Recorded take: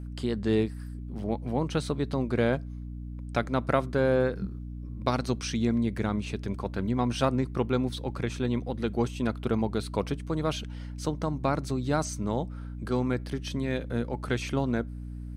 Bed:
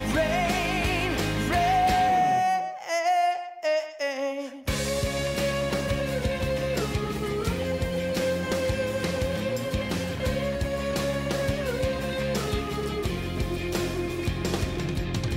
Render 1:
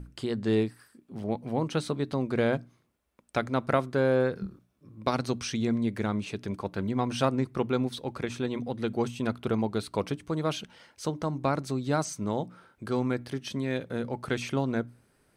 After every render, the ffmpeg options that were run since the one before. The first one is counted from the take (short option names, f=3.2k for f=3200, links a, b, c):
-af "bandreject=f=60:t=h:w=6,bandreject=f=120:t=h:w=6,bandreject=f=180:t=h:w=6,bandreject=f=240:t=h:w=6,bandreject=f=300:t=h:w=6"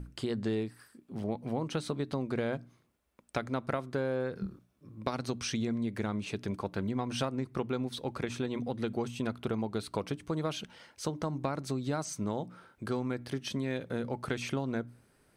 -af "acompressor=threshold=-29dB:ratio=6"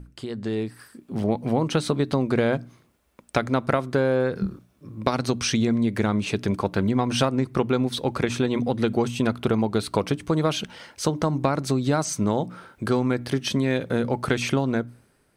-af "dynaudnorm=f=120:g=11:m=11dB"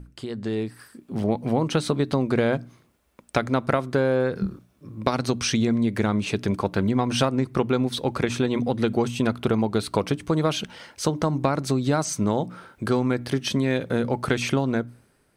-af anull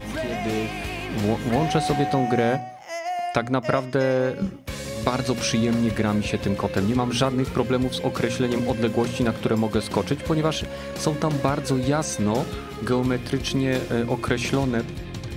-filter_complex "[1:a]volume=-5dB[a];[0:a][a]amix=inputs=2:normalize=0"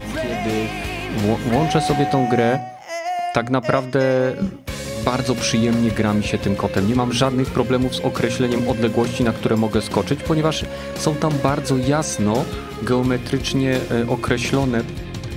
-af "volume=4dB,alimiter=limit=-2dB:level=0:latency=1"